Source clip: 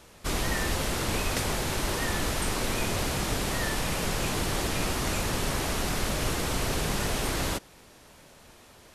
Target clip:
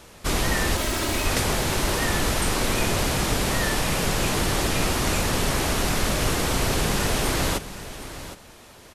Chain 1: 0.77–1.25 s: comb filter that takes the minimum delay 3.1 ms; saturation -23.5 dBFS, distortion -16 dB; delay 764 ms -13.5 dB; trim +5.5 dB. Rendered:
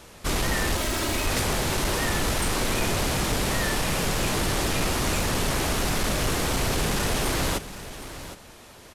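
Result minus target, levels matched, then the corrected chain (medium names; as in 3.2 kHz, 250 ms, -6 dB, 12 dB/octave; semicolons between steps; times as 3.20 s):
saturation: distortion +19 dB
0.77–1.25 s: comb filter that takes the minimum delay 3.1 ms; saturation -11.5 dBFS, distortion -36 dB; delay 764 ms -13.5 dB; trim +5.5 dB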